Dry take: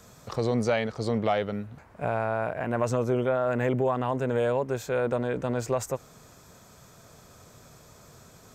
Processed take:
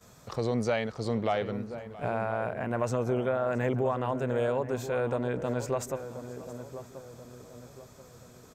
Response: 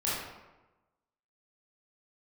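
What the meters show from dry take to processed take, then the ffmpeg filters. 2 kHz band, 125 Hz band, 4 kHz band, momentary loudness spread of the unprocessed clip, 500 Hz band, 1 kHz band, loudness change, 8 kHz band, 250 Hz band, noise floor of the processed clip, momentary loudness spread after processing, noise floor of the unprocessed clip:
−3.0 dB, −2.5 dB, −3.0 dB, 8 LU, −2.5 dB, −2.5 dB, −3.0 dB, −3.0 dB, −2.5 dB, −54 dBFS, 18 LU, −54 dBFS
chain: -filter_complex "[0:a]asplit=2[link_01][link_02];[link_02]aecho=0:1:671:0.119[link_03];[link_01][link_03]amix=inputs=2:normalize=0,agate=range=-14dB:threshold=-56dB:ratio=16:detection=peak,asplit=2[link_04][link_05];[link_05]adelay=1033,lowpass=frequency=990:poles=1,volume=-10.5dB,asplit=2[link_06][link_07];[link_07]adelay=1033,lowpass=frequency=990:poles=1,volume=0.44,asplit=2[link_08][link_09];[link_09]adelay=1033,lowpass=frequency=990:poles=1,volume=0.44,asplit=2[link_10][link_11];[link_11]adelay=1033,lowpass=frequency=990:poles=1,volume=0.44,asplit=2[link_12][link_13];[link_13]adelay=1033,lowpass=frequency=990:poles=1,volume=0.44[link_14];[link_06][link_08][link_10][link_12][link_14]amix=inputs=5:normalize=0[link_15];[link_04][link_15]amix=inputs=2:normalize=0,volume=-3dB"

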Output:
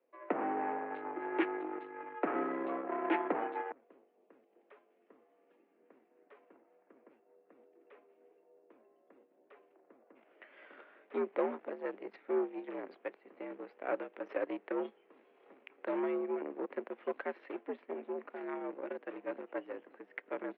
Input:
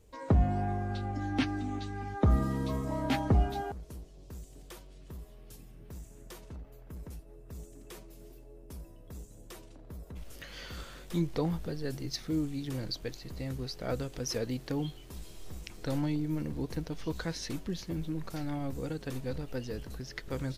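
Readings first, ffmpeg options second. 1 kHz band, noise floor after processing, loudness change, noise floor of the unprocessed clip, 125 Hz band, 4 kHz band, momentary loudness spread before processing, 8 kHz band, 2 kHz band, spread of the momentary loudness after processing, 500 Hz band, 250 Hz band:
+0.5 dB, −72 dBFS, −4.5 dB, −52 dBFS, below −30 dB, below −15 dB, 20 LU, below −30 dB, 0.0 dB, 13 LU, +1.5 dB, −6.5 dB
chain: -af "asoftclip=type=tanh:threshold=-18.5dB,aeval=exprs='0.106*(cos(1*acos(clip(val(0)/0.106,-1,1)))-cos(1*PI/2))+0.0119*(cos(5*acos(clip(val(0)/0.106,-1,1)))-cos(5*PI/2))+0.0188*(cos(7*acos(clip(val(0)/0.106,-1,1)))-cos(7*PI/2))':channel_layout=same,highpass=frequency=240:width_type=q:width=0.5412,highpass=frequency=240:width_type=q:width=1.307,lowpass=frequency=2400:width_type=q:width=0.5176,lowpass=frequency=2400:width_type=q:width=0.7071,lowpass=frequency=2400:width_type=q:width=1.932,afreqshift=66"

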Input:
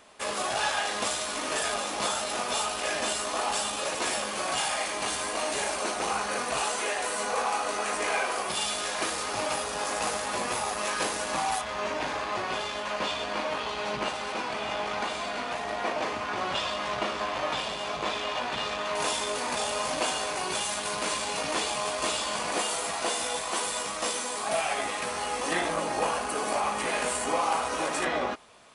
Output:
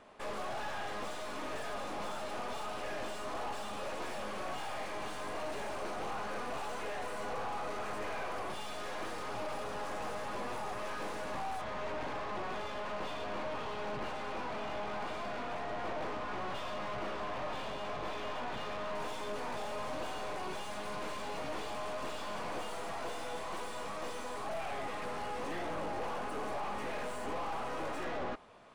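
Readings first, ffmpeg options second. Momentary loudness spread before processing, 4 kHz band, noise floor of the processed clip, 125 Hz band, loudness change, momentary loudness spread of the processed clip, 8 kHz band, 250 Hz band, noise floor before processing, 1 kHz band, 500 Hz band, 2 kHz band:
3 LU, −15.0 dB, −40 dBFS, −3.0 dB, −10.5 dB, 2 LU, −21.0 dB, −6.5 dB, −34 dBFS, −9.0 dB, −7.5 dB, −11.0 dB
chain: -af "aeval=exprs='(tanh(79.4*val(0)+0.65)-tanh(0.65))/79.4':channel_layout=same,lowpass=frequency=1200:poles=1,volume=3.5dB"

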